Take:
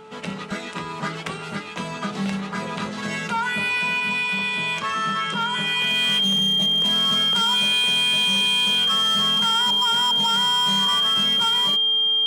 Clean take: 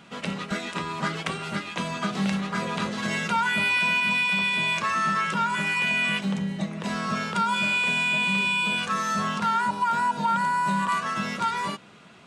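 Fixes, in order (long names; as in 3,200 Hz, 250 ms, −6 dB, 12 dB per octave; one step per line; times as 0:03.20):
clipped peaks rebuilt −16.5 dBFS
hum removal 434.6 Hz, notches 3
notch filter 3,200 Hz, Q 30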